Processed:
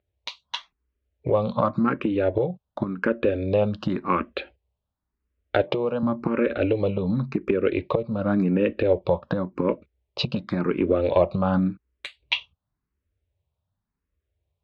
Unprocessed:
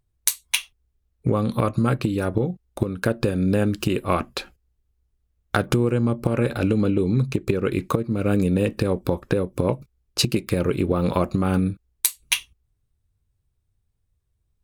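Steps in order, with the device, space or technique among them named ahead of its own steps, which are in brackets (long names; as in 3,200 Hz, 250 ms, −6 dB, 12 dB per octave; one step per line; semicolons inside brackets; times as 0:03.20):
0:05.61–0:06.03: high-pass filter 190 Hz 12 dB per octave
barber-pole phaser into a guitar amplifier (frequency shifter mixed with the dry sound +0.91 Hz; soft clipping −8 dBFS, distortion −26 dB; loudspeaker in its box 77–3,700 Hz, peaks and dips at 120 Hz −9 dB, 590 Hz +8 dB, 970 Hz +4 dB)
level +1.5 dB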